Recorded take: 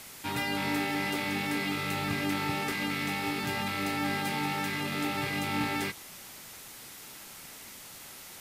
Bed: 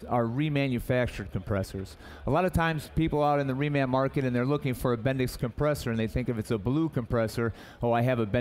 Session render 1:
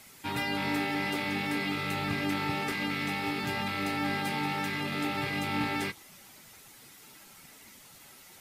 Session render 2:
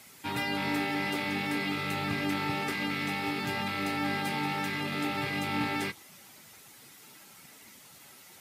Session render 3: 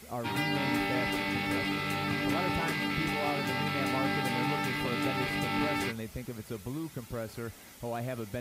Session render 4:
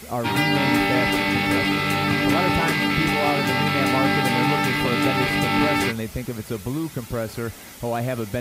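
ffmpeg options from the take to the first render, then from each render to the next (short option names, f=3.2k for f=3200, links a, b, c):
-af "afftdn=nr=8:nf=-47"
-af "highpass=80"
-filter_complex "[1:a]volume=-10.5dB[a];[0:a][a]amix=inputs=2:normalize=0"
-af "volume=10.5dB"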